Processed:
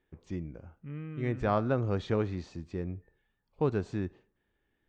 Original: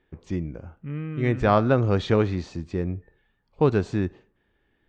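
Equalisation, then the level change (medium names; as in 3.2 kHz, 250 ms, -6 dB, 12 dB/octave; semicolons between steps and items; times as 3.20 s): dynamic bell 3.5 kHz, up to -3 dB, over -38 dBFS, Q 0.71; -8.5 dB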